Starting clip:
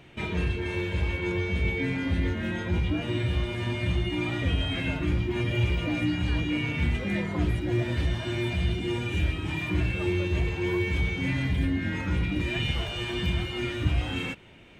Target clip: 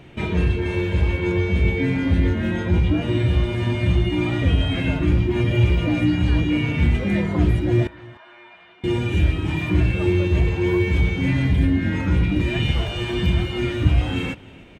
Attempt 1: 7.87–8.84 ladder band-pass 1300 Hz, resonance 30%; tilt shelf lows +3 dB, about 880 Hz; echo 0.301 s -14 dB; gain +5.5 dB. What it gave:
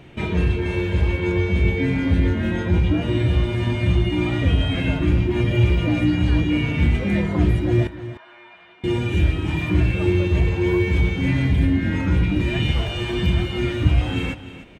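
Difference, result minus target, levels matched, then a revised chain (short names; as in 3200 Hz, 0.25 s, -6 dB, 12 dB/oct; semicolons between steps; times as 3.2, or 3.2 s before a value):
echo-to-direct +9 dB
7.87–8.84 ladder band-pass 1300 Hz, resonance 30%; tilt shelf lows +3 dB, about 880 Hz; echo 0.301 s -23 dB; gain +5.5 dB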